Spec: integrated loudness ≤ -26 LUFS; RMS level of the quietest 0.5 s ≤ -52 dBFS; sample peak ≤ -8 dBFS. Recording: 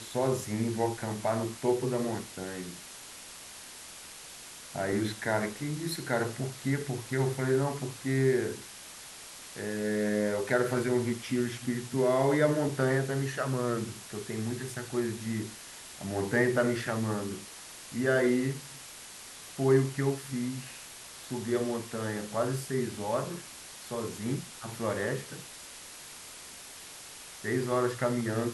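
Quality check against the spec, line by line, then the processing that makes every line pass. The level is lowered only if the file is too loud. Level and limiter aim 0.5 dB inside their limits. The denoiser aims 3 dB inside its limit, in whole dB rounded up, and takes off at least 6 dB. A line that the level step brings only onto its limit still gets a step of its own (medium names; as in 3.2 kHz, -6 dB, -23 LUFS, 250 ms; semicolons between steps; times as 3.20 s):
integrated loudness -31.0 LUFS: pass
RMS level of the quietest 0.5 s -47 dBFS: fail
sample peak -13.0 dBFS: pass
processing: noise reduction 8 dB, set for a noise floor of -47 dBFS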